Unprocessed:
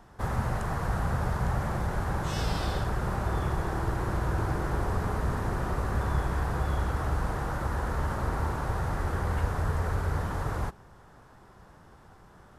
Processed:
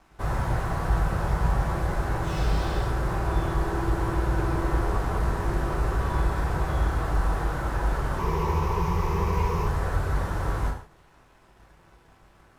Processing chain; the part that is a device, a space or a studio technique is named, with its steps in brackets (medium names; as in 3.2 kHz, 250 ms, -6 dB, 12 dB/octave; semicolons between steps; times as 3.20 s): 8.18–9.67 s: rippled EQ curve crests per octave 0.8, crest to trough 17 dB; early transistor amplifier (crossover distortion -55.5 dBFS; slew-rate limiter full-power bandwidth 30 Hz); gated-style reverb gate 190 ms falling, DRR -1 dB